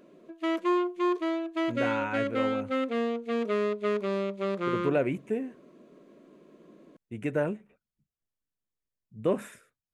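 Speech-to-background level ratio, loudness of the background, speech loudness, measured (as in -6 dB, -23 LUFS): -2.5 dB, -30.0 LUFS, -32.5 LUFS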